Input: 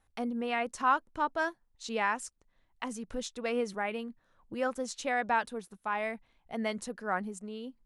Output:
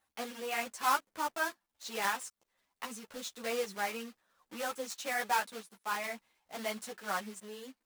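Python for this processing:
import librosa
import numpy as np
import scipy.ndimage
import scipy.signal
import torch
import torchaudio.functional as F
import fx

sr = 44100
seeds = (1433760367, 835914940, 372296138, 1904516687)

y = fx.block_float(x, sr, bits=3)
y = fx.highpass(y, sr, hz=480.0, slope=6)
y = fx.ensemble(y, sr)
y = y * librosa.db_to_amplitude(1.0)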